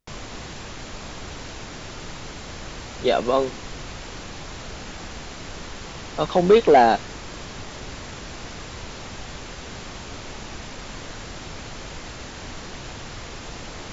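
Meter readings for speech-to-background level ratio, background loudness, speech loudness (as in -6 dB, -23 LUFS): 17.5 dB, -36.5 LUFS, -19.0 LUFS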